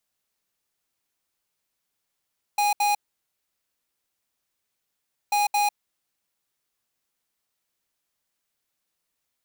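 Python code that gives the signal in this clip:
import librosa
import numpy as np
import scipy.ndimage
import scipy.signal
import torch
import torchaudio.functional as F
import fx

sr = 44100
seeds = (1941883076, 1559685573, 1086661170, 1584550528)

y = fx.beep_pattern(sr, wave='square', hz=824.0, on_s=0.15, off_s=0.07, beeps=2, pause_s=2.37, groups=2, level_db=-21.5)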